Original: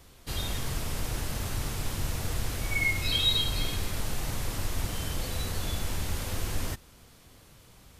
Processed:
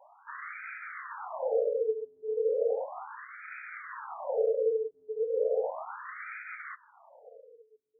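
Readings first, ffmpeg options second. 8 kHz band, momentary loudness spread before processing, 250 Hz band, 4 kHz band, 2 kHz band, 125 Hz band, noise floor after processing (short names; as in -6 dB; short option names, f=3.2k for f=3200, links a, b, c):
under -40 dB, 9 LU, under -20 dB, under -40 dB, -6.5 dB, under -40 dB, -63 dBFS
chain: -af "alimiter=limit=-22.5dB:level=0:latency=1:release=69,afreqshift=430,afftfilt=real='re*between(b*sr/1024,300*pow(1800/300,0.5+0.5*sin(2*PI*0.35*pts/sr))/1.41,300*pow(1800/300,0.5+0.5*sin(2*PI*0.35*pts/sr))*1.41)':imag='im*between(b*sr/1024,300*pow(1800/300,0.5+0.5*sin(2*PI*0.35*pts/sr))/1.41,300*pow(1800/300,0.5+0.5*sin(2*PI*0.35*pts/sr))*1.41)':win_size=1024:overlap=0.75,volume=5dB"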